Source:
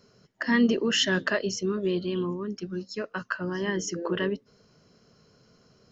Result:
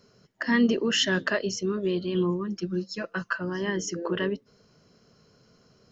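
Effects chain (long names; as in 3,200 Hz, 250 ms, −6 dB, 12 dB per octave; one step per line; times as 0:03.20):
0:02.14–0:03.38: comb filter 5.9 ms, depth 76%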